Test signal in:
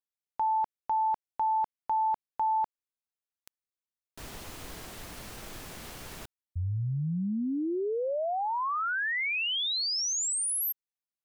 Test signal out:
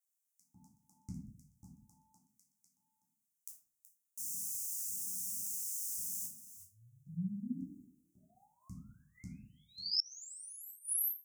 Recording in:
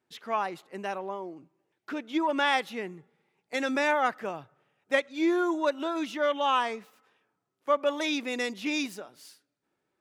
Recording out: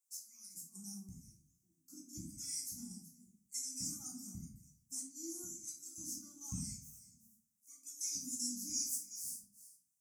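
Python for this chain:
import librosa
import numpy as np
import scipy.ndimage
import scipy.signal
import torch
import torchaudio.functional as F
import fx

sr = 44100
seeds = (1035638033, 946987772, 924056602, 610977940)

p1 = x + fx.echo_single(x, sr, ms=374, db=-13.5, dry=0)
p2 = fx.dynamic_eq(p1, sr, hz=3500.0, q=1.6, threshold_db=-43.0, ratio=4.0, max_db=4)
p3 = fx.filter_lfo_highpass(p2, sr, shape='square', hz=0.92, low_hz=880.0, high_hz=2100.0, q=7.1)
p4 = scipy.signal.sosfilt(scipy.signal.cheby2(6, 60, [420.0, 3700.0], 'bandstop', fs=sr, output='sos'), p3)
p5 = fx.low_shelf(p4, sr, hz=110.0, db=9.5)
p6 = fx.level_steps(p5, sr, step_db=21)
p7 = p5 + (p6 * librosa.db_to_amplitude(-2.5))
p8 = scipy.signal.sosfilt(scipy.signal.butter(2, 80.0, 'highpass', fs=sr, output='sos'), p7)
p9 = fx.hum_notches(p8, sr, base_hz=50, count=3)
p10 = 10.0 ** (-20.0 / 20.0) * np.tanh(p9 / 10.0 ** (-20.0 / 20.0))
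p11 = fx.room_shoebox(p10, sr, seeds[0], volume_m3=460.0, walls='furnished', distance_m=4.0)
p12 = fx.gate_flip(p11, sr, shuts_db=-24.0, range_db=-30)
y = p12 * librosa.db_to_amplitude(4.5)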